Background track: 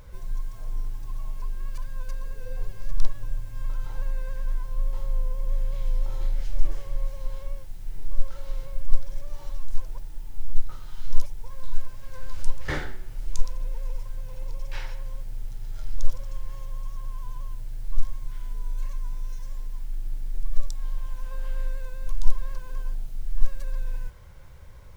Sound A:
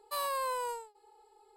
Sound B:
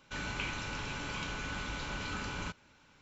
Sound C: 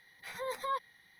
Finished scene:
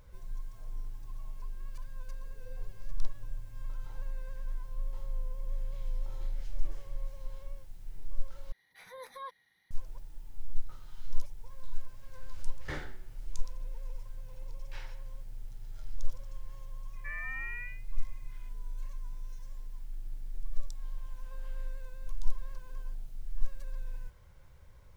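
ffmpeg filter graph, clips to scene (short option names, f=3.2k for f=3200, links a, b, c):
-filter_complex "[0:a]volume=-9.5dB[a];[1:a]lowpass=f=2.5k:t=q:w=0.5098,lowpass=f=2.5k:t=q:w=0.6013,lowpass=f=2.5k:t=q:w=0.9,lowpass=f=2.5k:t=q:w=2.563,afreqshift=-2900[b];[a]asplit=2[c][d];[c]atrim=end=8.524[e];[3:a]atrim=end=1.19,asetpts=PTS-STARTPTS,volume=-9dB[f];[d]atrim=start=9.706[g];[b]atrim=end=1.56,asetpts=PTS-STARTPTS,volume=-6dB,afade=t=in:d=0.004:c=hsin,afade=t=out:st=1.556:d=0.004:c=hsin,adelay=16930[h];[e][f]acrossfade=d=0.004:c1=hsin:c2=hsin[i];[i][g]acrossfade=d=0.004:c1=hsin:c2=hsin[j];[j][h]amix=inputs=2:normalize=0"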